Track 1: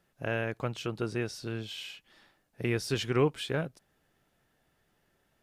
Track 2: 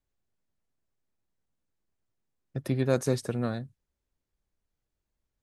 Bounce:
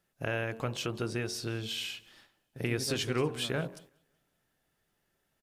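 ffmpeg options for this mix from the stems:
-filter_complex "[0:a]acompressor=threshold=0.02:ratio=2,highshelf=f=4700:g=6,bandreject=f=45.14:t=h:w=4,bandreject=f=90.28:t=h:w=4,bandreject=f=135.42:t=h:w=4,bandreject=f=180.56:t=h:w=4,bandreject=f=225.7:t=h:w=4,bandreject=f=270.84:t=h:w=4,bandreject=f=315.98:t=h:w=4,bandreject=f=361.12:t=h:w=4,bandreject=f=406.26:t=h:w=4,bandreject=f=451.4:t=h:w=4,bandreject=f=496.54:t=h:w=4,bandreject=f=541.68:t=h:w=4,bandreject=f=586.82:t=h:w=4,bandreject=f=631.96:t=h:w=4,bandreject=f=677.1:t=h:w=4,bandreject=f=722.24:t=h:w=4,bandreject=f=767.38:t=h:w=4,bandreject=f=812.52:t=h:w=4,bandreject=f=857.66:t=h:w=4,bandreject=f=902.8:t=h:w=4,bandreject=f=947.94:t=h:w=4,bandreject=f=993.08:t=h:w=4,bandreject=f=1038.22:t=h:w=4,bandreject=f=1083.36:t=h:w=4,bandreject=f=1128.5:t=h:w=4,bandreject=f=1173.64:t=h:w=4,volume=1.41,asplit=2[s0][s1];[s1]volume=0.0631[s2];[1:a]volume=0.188[s3];[s2]aecho=0:1:186|372|558|744|930|1116:1|0.45|0.202|0.0911|0.041|0.0185[s4];[s0][s3][s4]amix=inputs=3:normalize=0,agate=range=0.355:threshold=0.00178:ratio=16:detection=peak"

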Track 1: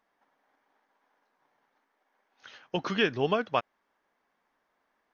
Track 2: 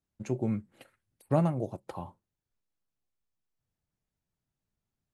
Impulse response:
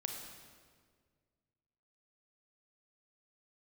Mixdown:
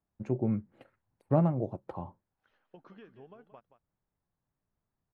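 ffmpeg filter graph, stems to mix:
-filter_complex "[0:a]highshelf=f=2600:g=-10.5,acompressor=threshold=0.0251:ratio=6,volume=0.15,asplit=2[s0][s1];[s1]volume=0.237[s2];[1:a]lowpass=f=2100:p=1,volume=1.12[s3];[s2]aecho=0:1:176:1[s4];[s0][s3][s4]amix=inputs=3:normalize=0,highshelf=f=2400:g=-10"

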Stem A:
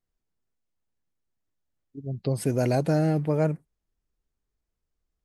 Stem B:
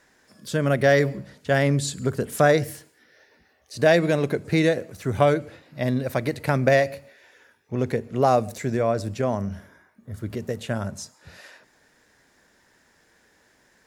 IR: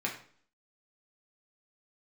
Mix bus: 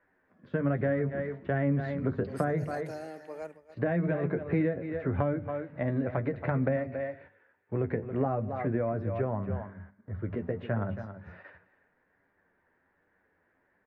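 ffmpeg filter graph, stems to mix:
-filter_complex "[0:a]highpass=470,volume=0.251,asplit=2[s0][s1];[s1]volume=0.224[s2];[1:a]lowpass=f=2000:w=0.5412,lowpass=f=2000:w=1.3066,flanger=delay=9.9:depth=2.2:regen=36:speed=1.3:shape=triangular,volume=1.33,asplit=2[s3][s4];[s4]volume=0.237[s5];[s2][s5]amix=inputs=2:normalize=0,aecho=0:1:275:1[s6];[s0][s3][s6]amix=inputs=3:normalize=0,agate=range=0.398:threshold=0.00316:ratio=16:detection=peak,bandreject=f=50:t=h:w=6,bandreject=f=100:t=h:w=6,bandreject=f=150:t=h:w=6,bandreject=f=200:t=h:w=6,bandreject=f=250:t=h:w=6,acrossover=split=240[s7][s8];[s8]acompressor=threshold=0.0316:ratio=6[s9];[s7][s9]amix=inputs=2:normalize=0"

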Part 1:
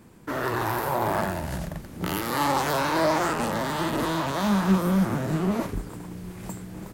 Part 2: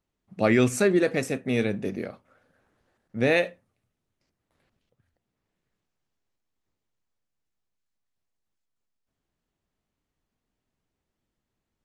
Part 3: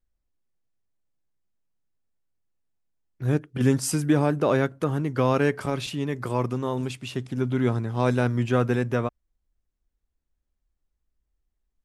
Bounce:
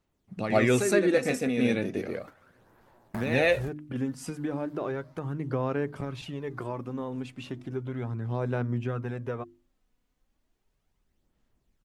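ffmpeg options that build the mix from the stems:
-filter_complex "[0:a]adelay=2000,volume=0.398[s0];[1:a]volume=1.19,asplit=3[s1][s2][s3];[s2]volume=0.631[s4];[2:a]highshelf=f=3500:g=-12,bandreject=f=50:t=h:w=6,bandreject=f=100:t=h:w=6,bandreject=f=150:t=h:w=6,bandreject=f=200:t=h:w=6,bandreject=f=250:t=h:w=6,bandreject=f=300:t=h:w=6,bandreject=f=350:t=h:w=6,acompressor=threshold=0.0316:ratio=2.5,adelay=350,volume=0.75[s5];[s3]apad=whole_len=393879[s6];[s0][s6]sidechaingate=range=0.0224:threshold=0.00224:ratio=16:detection=peak[s7];[s7][s1]amix=inputs=2:normalize=0,acompressor=threshold=0.0158:ratio=2,volume=1[s8];[s4]aecho=0:1:114:1[s9];[s5][s8][s9]amix=inputs=3:normalize=0,aphaser=in_gain=1:out_gain=1:delay=4.1:decay=0.39:speed=0.35:type=sinusoidal"

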